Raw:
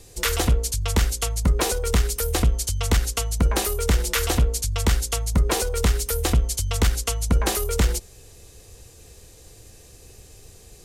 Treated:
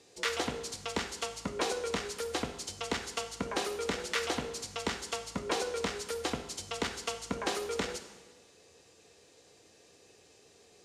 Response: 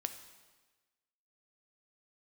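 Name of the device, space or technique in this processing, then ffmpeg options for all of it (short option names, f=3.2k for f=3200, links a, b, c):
supermarket ceiling speaker: -filter_complex "[0:a]highpass=250,lowpass=5.5k[a];[1:a]atrim=start_sample=2205[b];[a][b]afir=irnorm=-1:irlink=0,volume=-6dB"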